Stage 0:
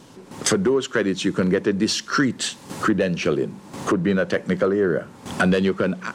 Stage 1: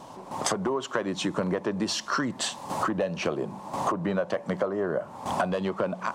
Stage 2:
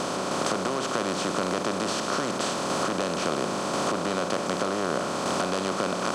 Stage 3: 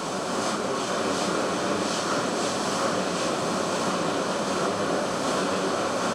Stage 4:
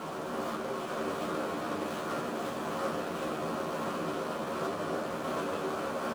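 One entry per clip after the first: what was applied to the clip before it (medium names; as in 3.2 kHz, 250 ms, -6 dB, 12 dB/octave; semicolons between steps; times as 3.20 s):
high-order bell 810 Hz +13 dB 1.2 oct; compression 6:1, threshold -21 dBFS, peak gain reduction 12.5 dB; trim -3 dB
spectral levelling over time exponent 0.2; trim -8.5 dB
phase randomisation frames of 200 ms; delay 748 ms -4 dB
median filter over 9 samples; doubling 13 ms -4 dB; trim -9 dB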